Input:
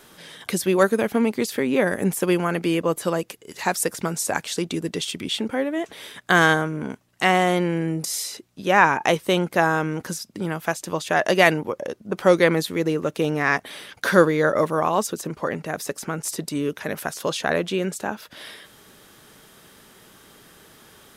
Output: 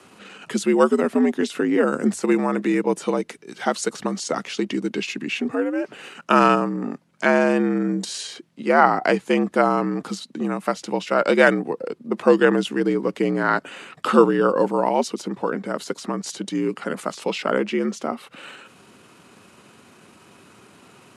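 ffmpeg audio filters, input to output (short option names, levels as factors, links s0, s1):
-af "afreqshift=94,asetrate=34006,aresample=44100,atempo=1.29684,bass=f=250:g=3,treble=f=4000:g=-6,volume=1.12"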